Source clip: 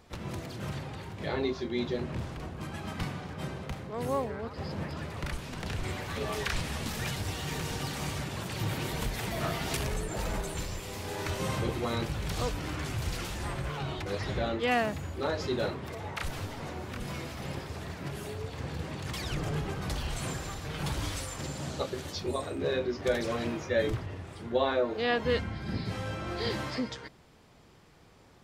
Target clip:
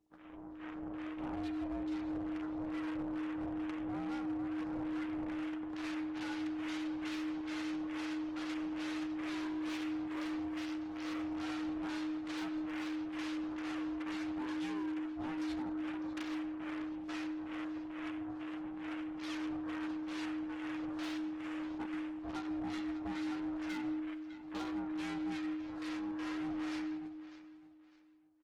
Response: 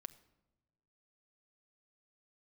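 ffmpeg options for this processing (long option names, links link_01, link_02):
-filter_complex "[0:a]acrossover=split=650[link_01][link_02];[link_01]aeval=exprs='val(0)*(1-1/2+1/2*cos(2*PI*2.3*n/s))':channel_layout=same[link_03];[link_02]aeval=exprs='val(0)*(1-1/2-1/2*cos(2*PI*2.3*n/s))':channel_layout=same[link_04];[link_03][link_04]amix=inputs=2:normalize=0,asetnsamples=nb_out_samples=441:pad=0,asendcmd='5.47 highpass f 770',highpass=300,lowpass=3300,aeval=exprs='max(val(0),0)':channel_layout=same,afwtdn=0.00158,dynaudnorm=framelen=140:gausssize=11:maxgain=12dB[link_05];[1:a]atrim=start_sample=2205,afade=type=out:start_time=0.17:duration=0.01,atrim=end_sample=7938,asetrate=25137,aresample=44100[link_06];[link_05][link_06]afir=irnorm=-1:irlink=0,acompressor=threshold=-33dB:ratio=12,aecho=1:1:603|1206|1809:0.141|0.0396|0.0111,aeval=exprs='val(0)*sin(2*PI*310*n/s)':channel_layout=same,volume=33.5dB,asoftclip=hard,volume=-33.5dB,volume=1dB" -ar 48000 -c:a libopus -b:a 24k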